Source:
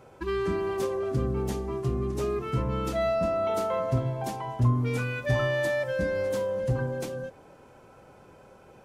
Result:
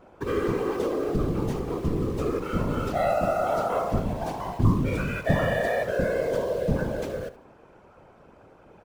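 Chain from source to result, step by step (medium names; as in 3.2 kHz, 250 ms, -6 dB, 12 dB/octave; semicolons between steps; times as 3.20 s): peaking EQ 11 kHz -11 dB 2 oct; in parallel at -11.5 dB: bit crusher 6-bit; on the sum: whisper effect; feedback delay 73 ms, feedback 27%, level -15.5 dB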